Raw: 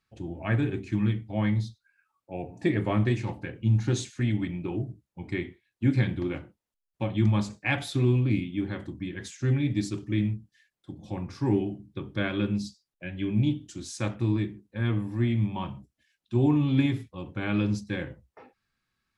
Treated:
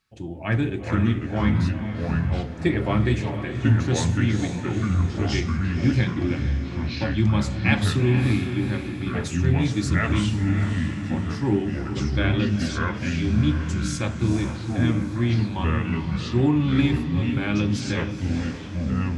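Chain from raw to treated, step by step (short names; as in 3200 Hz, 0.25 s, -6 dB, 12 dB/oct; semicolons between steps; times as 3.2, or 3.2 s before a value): bell 5900 Hz +3.5 dB 2.9 oct; diffused feedback echo 0.451 s, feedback 52%, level -9 dB; echoes that change speed 0.307 s, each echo -4 st, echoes 2; gain +2.5 dB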